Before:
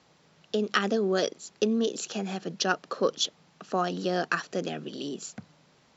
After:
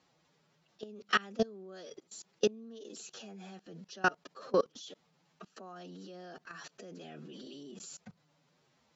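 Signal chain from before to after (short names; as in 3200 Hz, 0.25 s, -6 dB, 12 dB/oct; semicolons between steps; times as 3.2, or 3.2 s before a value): time stretch by phase-locked vocoder 1.5×; level quantiser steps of 24 dB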